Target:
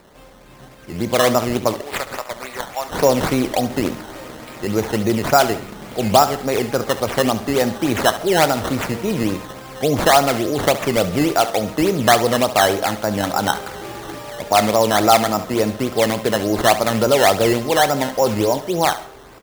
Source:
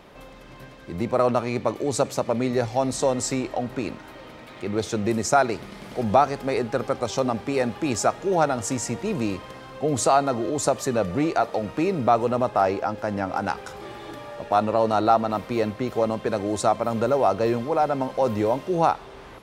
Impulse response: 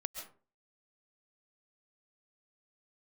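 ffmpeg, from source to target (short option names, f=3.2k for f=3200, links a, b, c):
-filter_complex "[0:a]asplit=3[a][b][c];[a]afade=t=out:st=1.8:d=0.02[d];[b]highpass=1.2k,afade=t=in:st=1.8:d=0.02,afade=t=out:st=2.92:d=0.02[e];[c]afade=t=in:st=2.92:d=0.02[f];[d][e][f]amix=inputs=3:normalize=0,acrusher=samples=13:mix=1:aa=0.000001:lfo=1:lforange=13:lforate=3.5,aecho=1:1:28|70:0.15|0.211,dynaudnorm=f=140:g=13:m=11.5dB,asplit=2[g][h];[1:a]atrim=start_sample=2205[i];[h][i]afir=irnorm=-1:irlink=0,volume=-13dB[j];[g][j]amix=inputs=2:normalize=0,volume=-2dB"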